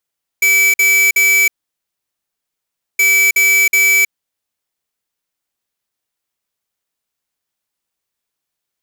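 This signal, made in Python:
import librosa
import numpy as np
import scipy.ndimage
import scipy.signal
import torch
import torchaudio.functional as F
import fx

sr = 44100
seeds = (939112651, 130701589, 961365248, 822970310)

y = fx.beep_pattern(sr, wave='square', hz=2300.0, on_s=0.32, off_s=0.05, beeps=3, pause_s=1.51, groups=2, level_db=-11.0)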